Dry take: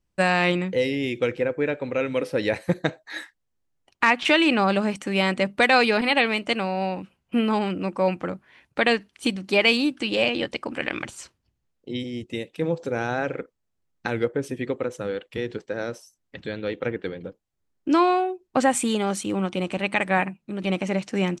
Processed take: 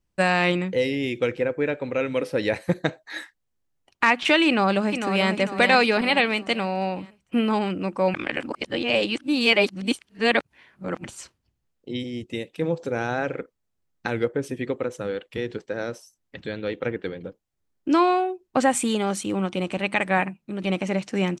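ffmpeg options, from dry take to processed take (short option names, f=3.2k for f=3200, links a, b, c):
-filter_complex "[0:a]asplit=2[a][b];[b]afade=t=in:st=4.47:d=0.01,afade=t=out:st=5.3:d=0.01,aecho=0:1:450|900|1350|1800|2250:0.446684|0.201008|0.0904534|0.040704|0.0183168[c];[a][c]amix=inputs=2:normalize=0,asplit=3[d][e][f];[d]atrim=end=8.142[g];[e]atrim=start=8.138:end=11.042,asetpts=PTS-STARTPTS,areverse[h];[f]atrim=start=11.038[i];[g][h]acrossfade=d=0.004:c1=hsin:c2=hsin[j];[j][i]acrossfade=d=0.004:c1=hsin:c2=hsin"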